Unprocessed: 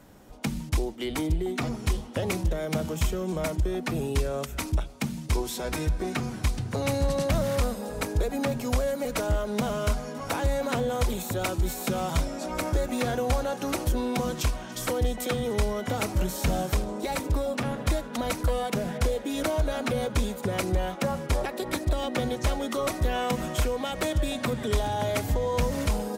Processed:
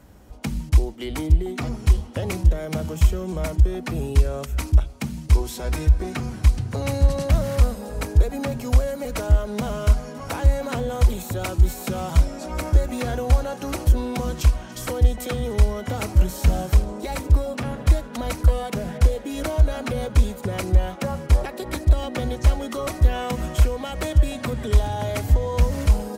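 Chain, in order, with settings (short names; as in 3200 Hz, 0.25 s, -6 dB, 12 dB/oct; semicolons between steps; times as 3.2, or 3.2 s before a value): bell 63 Hz +13.5 dB 1.1 oct; notch 3600 Hz, Q 26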